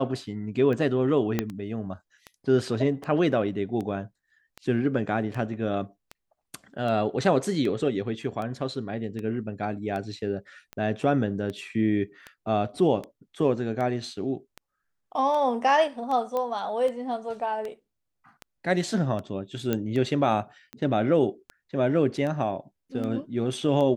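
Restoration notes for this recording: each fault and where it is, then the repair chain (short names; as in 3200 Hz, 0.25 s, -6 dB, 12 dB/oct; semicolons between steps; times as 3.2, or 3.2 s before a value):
tick 78 rpm -22 dBFS
1.39 pop -11 dBFS
16.37 pop -17 dBFS
19.73 pop -13 dBFS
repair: de-click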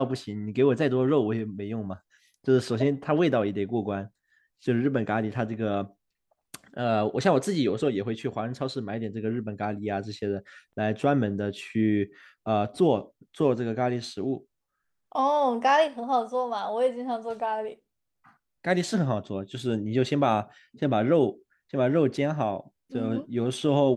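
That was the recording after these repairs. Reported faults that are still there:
1.39 pop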